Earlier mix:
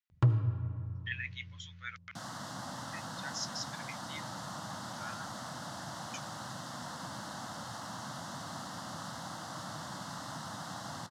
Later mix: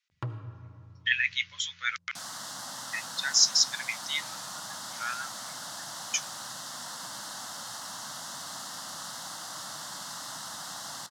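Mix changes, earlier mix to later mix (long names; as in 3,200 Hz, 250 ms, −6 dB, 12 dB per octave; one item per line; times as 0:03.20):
speech +9.5 dB
first sound: add low-pass filter 1,500 Hz 6 dB per octave
master: add spectral tilt +3.5 dB per octave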